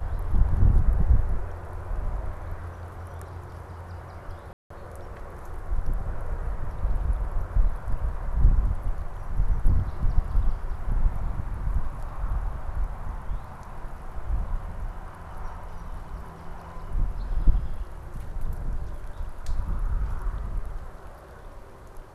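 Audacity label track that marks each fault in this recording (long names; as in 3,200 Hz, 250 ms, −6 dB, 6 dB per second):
4.530000	4.700000	drop-out 174 ms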